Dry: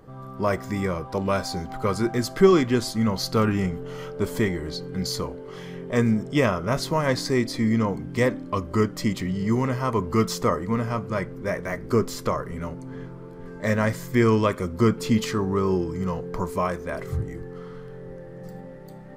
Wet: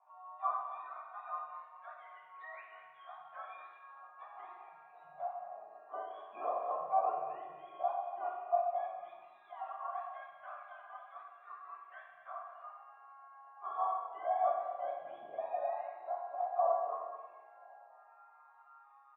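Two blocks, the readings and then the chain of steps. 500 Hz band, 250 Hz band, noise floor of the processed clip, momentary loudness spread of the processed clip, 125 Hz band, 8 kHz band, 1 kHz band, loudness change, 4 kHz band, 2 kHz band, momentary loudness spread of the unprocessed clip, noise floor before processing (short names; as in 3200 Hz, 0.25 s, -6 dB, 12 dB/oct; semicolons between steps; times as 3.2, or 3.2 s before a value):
-16.0 dB, under -40 dB, -61 dBFS, 21 LU, under -40 dB, under -40 dB, -5.5 dB, -14.5 dB, under -30 dB, -22.0 dB, 16 LU, -40 dBFS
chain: spectrum mirrored in octaves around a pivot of 850 Hz; in parallel at +1 dB: limiter -17.5 dBFS, peak gain reduction 9.5 dB; on the sum: vocal tract filter a; LFO high-pass sine 0.11 Hz 500–1700 Hz; echo 0.236 s -13 dB; plate-style reverb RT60 1.1 s, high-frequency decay 1×, DRR -0.5 dB; gain -8 dB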